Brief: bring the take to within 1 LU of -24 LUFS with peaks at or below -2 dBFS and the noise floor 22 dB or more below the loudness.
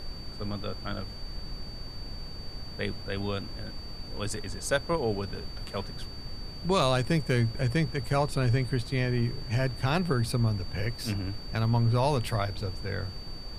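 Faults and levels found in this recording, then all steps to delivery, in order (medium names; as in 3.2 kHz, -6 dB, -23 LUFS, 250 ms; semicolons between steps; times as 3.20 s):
steady tone 4.6 kHz; tone level -44 dBFS; noise floor -41 dBFS; noise floor target -52 dBFS; loudness -30.0 LUFS; peak level -10.5 dBFS; loudness target -24.0 LUFS
-> band-stop 4.6 kHz, Q 30; noise print and reduce 11 dB; trim +6 dB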